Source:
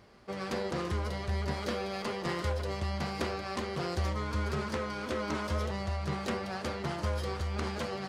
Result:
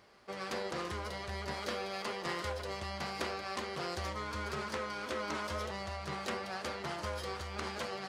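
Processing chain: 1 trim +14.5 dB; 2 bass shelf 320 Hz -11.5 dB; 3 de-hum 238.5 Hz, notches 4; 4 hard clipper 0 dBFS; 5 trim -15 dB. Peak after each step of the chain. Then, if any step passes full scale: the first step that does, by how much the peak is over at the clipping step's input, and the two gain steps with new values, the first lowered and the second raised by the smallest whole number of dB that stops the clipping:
-2.5 dBFS, -4.0 dBFS, -4.0 dBFS, -4.0 dBFS, -19.0 dBFS; nothing clips

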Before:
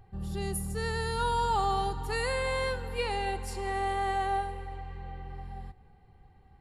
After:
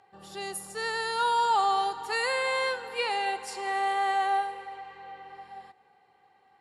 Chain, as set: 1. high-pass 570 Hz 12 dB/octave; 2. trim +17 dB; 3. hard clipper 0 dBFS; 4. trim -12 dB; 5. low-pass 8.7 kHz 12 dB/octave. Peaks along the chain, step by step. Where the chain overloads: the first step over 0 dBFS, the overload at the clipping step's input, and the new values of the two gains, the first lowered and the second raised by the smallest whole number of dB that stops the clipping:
-21.0 dBFS, -4.0 dBFS, -4.0 dBFS, -16.0 dBFS, -16.0 dBFS; nothing clips

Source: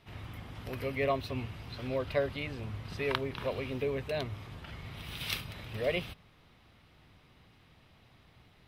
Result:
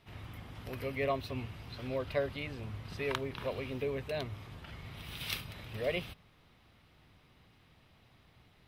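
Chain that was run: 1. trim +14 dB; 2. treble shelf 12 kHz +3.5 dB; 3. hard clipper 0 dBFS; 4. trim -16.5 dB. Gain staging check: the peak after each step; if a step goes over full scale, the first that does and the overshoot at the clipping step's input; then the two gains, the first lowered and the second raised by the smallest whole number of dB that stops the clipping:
+6.0 dBFS, +6.0 dBFS, 0.0 dBFS, -16.5 dBFS; step 1, 6.0 dB; step 1 +8 dB, step 4 -10.5 dB

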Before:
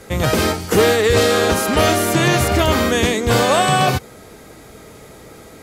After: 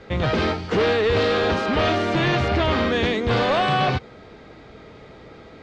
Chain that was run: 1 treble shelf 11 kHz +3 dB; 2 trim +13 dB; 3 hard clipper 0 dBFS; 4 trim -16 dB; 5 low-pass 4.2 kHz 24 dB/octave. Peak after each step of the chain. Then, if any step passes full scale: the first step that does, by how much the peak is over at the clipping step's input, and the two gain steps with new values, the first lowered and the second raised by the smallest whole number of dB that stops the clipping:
-6.0 dBFS, +7.0 dBFS, 0.0 dBFS, -16.0 dBFS, -14.0 dBFS; step 2, 7.0 dB; step 2 +6 dB, step 4 -9 dB

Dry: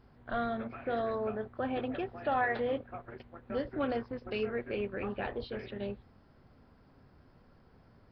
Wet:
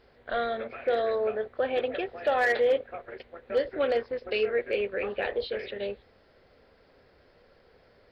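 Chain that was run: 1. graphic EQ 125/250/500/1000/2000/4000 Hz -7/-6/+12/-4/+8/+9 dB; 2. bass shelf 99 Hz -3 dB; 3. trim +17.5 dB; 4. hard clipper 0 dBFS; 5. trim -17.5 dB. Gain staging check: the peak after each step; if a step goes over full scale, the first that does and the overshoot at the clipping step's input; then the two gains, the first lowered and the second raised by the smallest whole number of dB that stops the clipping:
-13.5 dBFS, -13.5 dBFS, +4.0 dBFS, 0.0 dBFS, -17.5 dBFS; step 3, 4.0 dB; step 3 +13.5 dB, step 5 -13.5 dB

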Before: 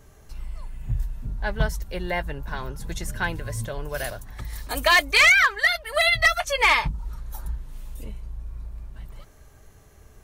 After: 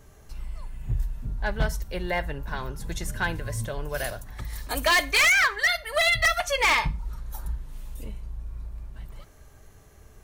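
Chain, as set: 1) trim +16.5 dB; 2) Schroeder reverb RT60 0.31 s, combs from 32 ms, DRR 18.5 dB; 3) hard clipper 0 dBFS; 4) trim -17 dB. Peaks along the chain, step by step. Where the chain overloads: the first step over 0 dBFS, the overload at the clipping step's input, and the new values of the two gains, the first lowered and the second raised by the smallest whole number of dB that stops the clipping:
+5.0 dBFS, +7.0 dBFS, 0.0 dBFS, -17.0 dBFS; step 1, 7.0 dB; step 1 +9.5 dB, step 4 -10 dB

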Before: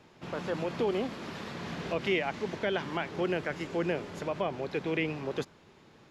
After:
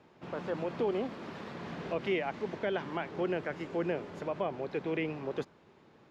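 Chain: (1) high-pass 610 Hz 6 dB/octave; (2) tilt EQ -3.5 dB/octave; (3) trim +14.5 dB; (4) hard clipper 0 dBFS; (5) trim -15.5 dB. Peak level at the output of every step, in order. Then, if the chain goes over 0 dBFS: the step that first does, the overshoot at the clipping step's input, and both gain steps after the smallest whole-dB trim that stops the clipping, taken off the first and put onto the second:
-19.0 dBFS, -20.0 dBFS, -5.5 dBFS, -5.5 dBFS, -21.0 dBFS; nothing clips

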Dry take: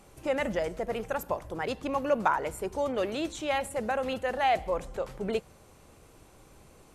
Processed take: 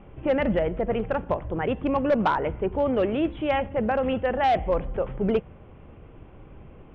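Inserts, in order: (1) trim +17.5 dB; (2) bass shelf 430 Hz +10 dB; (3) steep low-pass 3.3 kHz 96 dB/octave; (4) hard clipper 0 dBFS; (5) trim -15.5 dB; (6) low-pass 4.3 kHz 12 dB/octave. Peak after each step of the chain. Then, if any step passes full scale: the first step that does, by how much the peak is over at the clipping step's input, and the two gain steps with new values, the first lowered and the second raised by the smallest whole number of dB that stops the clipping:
+5.0 dBFS, +6.5 dBFS, +6.5 dBFS, 0.0 dBFS, -15.5 dBFS, -15.0 dBFS; step 1, 6.5 dB; step 1 +10.5 dB, step 5 -8.5 dB

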